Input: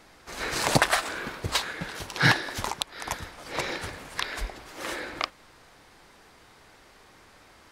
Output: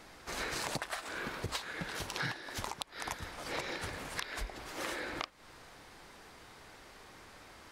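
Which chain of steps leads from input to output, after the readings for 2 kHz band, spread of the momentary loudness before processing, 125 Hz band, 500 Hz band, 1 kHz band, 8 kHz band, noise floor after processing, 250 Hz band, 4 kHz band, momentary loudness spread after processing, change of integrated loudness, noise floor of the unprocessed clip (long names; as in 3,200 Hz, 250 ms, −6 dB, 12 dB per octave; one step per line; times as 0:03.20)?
−11.0 dB, 13 LU, −12.5 dB, −9.5 dB, −10.5 dB, −9.5 dB, −56 dBFS, −10.5 dB, −10.5 dB, 17 LU, −10.5 dB, −55 dBFS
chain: downward compressor 8 to 1, threshold −35 dBFS, peak gain reduction 19.5 dB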